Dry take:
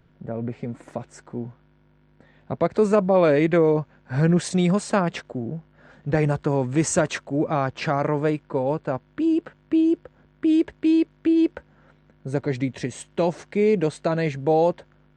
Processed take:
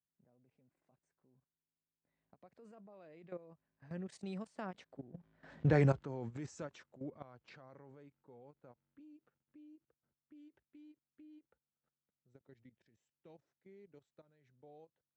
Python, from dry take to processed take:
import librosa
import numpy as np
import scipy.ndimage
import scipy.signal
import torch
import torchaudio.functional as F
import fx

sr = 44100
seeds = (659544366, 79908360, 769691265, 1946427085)

y = fx.doppler_pass(x, sr, speed_mps=24, closest_m=2.2, pass_at_s=5.69)
y = scipy.signal.sosfilt(scipy.signal.butter(2, 7700.0, 'lowpass', fs=sr, output='sos'), y)
y = fx.level_steps(y, sr, step_db=15)
y = scipy.signal.sosfilt(scipy.signal.butter(4, 55.0, 'highpass', fs=sr, output='sos'), y)
y = fx.end_taper(y, sr, db_per_s=550.0)
y = F.gain(torch.from_numpy(y), 3.0).numpy()